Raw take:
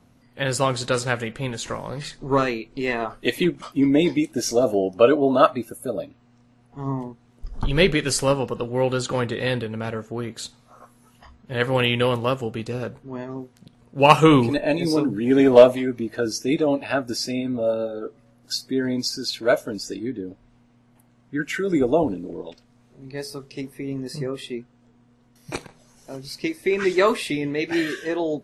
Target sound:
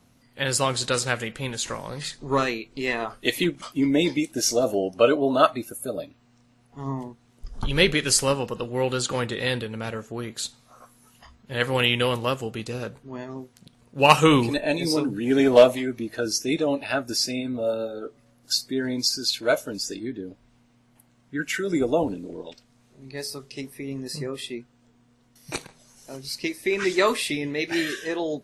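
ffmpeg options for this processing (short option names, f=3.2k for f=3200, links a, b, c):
-af "highshelf=f=2.4k:g=8.5,volume=-3.5dB"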